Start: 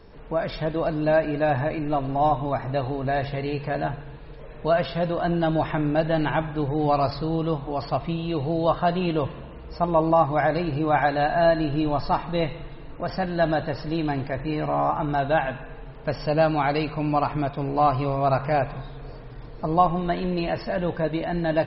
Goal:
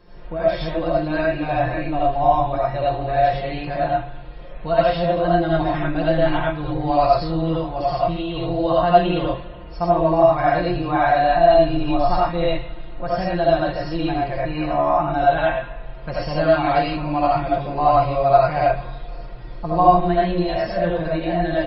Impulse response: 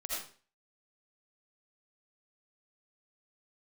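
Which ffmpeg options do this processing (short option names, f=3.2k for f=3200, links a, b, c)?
-filter_complex "[0:a]aecho=1:1:5.7:0.85[a];[1:a]atrim=start_sample=2205,afade=t=out:st=0.18:d=0.01,atrim=end_sample=8379[b];[a][b]afir=irnorm=-1:irlink=0"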